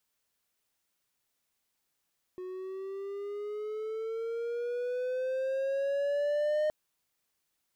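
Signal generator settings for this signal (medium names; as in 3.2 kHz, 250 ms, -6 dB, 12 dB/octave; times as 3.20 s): gliding synth tone triangle, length 4.32 s, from 365 Hz, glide +9 st, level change +12 dB, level -23.5 dB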